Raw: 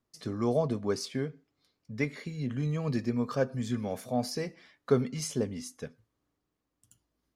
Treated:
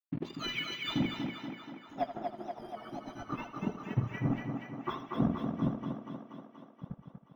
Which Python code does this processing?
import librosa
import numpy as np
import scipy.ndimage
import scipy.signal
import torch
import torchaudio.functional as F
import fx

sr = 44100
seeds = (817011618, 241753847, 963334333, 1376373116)

y = fx.octave_mirror(x, sr, pivot_hz=1200.0)
y = 10.0 ** (-33.5 / 20.0) * np.tanh(y / 10.0 ** (-33.5 / 20.0))
y = fx.low_shelf(y, sr, hz=350.0, db=9.5)
y = fx.hum_notches(y, sr, base_hz=50, count=6)
y = fx.transient(y, sr, attack_db=9, sustain_db=-12)
y = np.sign(y) * np.maximum(np.abs(y) - 10.0 ** (-48.0 / 20.0), 0.0)
y = fx.echo_thinned(y, sr, ms=239, feedback_pct=69, hz=180.0, wet_db=-4)
y = fx.filter_sweep_lowpass(y, sr, from_hz=2700.0, to_hz=1300.0, start_s=0.82, end_s=2.19, q=1.5)
y = fx.echo_feedback(y, sr, ms=80, feedback_pct=41, wet_db=-12)
y = np.interp(np.arange(len(y)), np.arange(len(y))[::2], y[::2])